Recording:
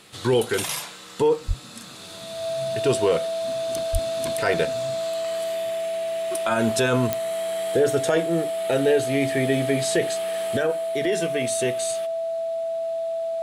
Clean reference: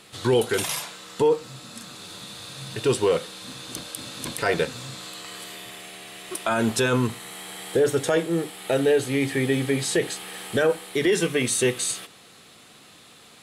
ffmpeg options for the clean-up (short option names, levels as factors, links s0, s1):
-filter_complex "[0:a]adeclick=t=4,bandreject=f=660:w=30,asplit=3[s0][s1][s2];[s0]afade=t=out:st=1.47:d=0.02[s3];[s1]highpass=f=140:w=0.5412,highpass=f=140:w=1.3066,afade=t=in:st=1.47:d=0.02,afade=t=out:st=1.59:d=0.02[s4];[s2]afade=t=in:st=1.59:d=0.02[s5];[s3][s4][s5]amix=inputs=3:normalize=0,asplit=3[s6][s7][s8];[s6]afade=t=out:st=3.92:d=0.02[s9];[s7]highpass=f=140:w=0.5412,highpass=f=140:w=1.3066,afade=t=in:st=3.92:d=0.02,afade=t=out:st=4.04:d=0.02[s10];[s8]afade=t=in:st=4.04:d=0.02[s11];[s9][s10][s11]amix=inputs=3:normalize=0,asetnsamples=n=441:p=0,asendcmd='10.57 volume volume 4dB',volume=1"